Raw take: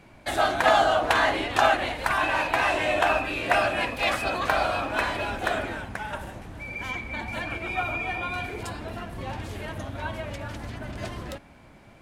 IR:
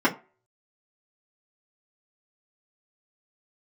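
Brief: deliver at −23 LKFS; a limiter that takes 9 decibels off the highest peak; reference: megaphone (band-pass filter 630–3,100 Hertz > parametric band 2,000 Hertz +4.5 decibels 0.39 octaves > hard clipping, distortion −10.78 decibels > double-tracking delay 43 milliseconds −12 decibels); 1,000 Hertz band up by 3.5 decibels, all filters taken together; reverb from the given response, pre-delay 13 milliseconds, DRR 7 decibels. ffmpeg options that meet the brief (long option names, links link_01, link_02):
-filter_complex "[0:a]equalizer=frequency=1000:width_type=o:gain=6,alimiter=limit=-11.5dB:level=0:latency=1,asplit=2[link_01][link_02];[1:a]atrim=start_sample=2205,adelay=13[link_03];[link_02][link_03]afir=irnorm=-1:irlink=0,volume=-23dB[link_04];[link_01][link_04]amix=inputs=2:normalize=0,highpass=630,lowpass=3100,equalizer=frequency=2000:width_type=o:width=0.39:gain=4.5,asoftclip=type=hard:threshold=-20.5dB,asplit=2[link_05][link_06];[link_06]adelay=43,volume=-12dB[link_07];[link_05][link_07]amix=inputs=2:normalize=0,volume=3.5dB"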